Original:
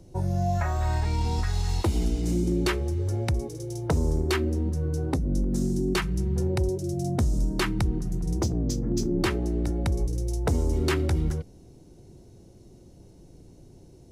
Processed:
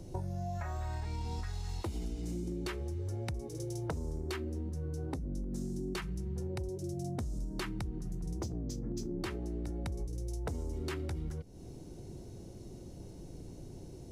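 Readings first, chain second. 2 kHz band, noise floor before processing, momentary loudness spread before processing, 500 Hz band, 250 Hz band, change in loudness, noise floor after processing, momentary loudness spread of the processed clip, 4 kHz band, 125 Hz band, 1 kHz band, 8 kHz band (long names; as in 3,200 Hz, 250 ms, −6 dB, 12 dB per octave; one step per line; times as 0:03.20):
−12.5 dB, −51 dBFS, 3 LU, −11.5 dB, −11.5 dB, −12.5 dB, −49 dBFS, 11 LU, −12.0 dB, −11.5 dB, −12.0 dB, −11.5 dB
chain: downward compressor, threshold −39 dBFS, peak gain reduction 18 dB
level +3 dB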